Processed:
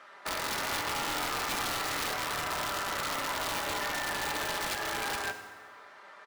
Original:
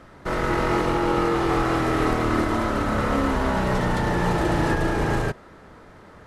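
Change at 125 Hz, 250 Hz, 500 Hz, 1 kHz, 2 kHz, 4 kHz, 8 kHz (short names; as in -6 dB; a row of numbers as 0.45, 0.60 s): -22.5, -21.0, -15.0, -8.5, -4.5, +2.0, +5.0 dB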